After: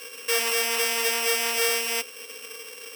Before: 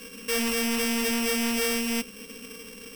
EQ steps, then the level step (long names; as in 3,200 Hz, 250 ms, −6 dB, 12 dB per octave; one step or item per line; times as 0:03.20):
high-pass filter 450 Hz 24 dB per octave
+4.0 dB